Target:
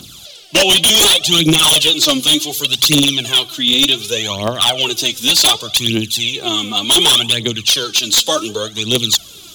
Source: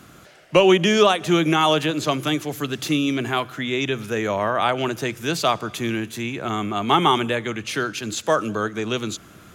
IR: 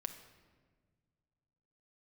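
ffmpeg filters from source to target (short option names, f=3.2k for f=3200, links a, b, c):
-af "aphaser=in_gain=1:out_gain=1:delay=4.2:decay=0.7:speed=0.67:type=triangular,highshelf=f=2.5k:t=q:w=3:g=12.5,aeval=exprs='0.596*(abs(mod(val(0)/0.596+3,4)-2)-1)':c=same"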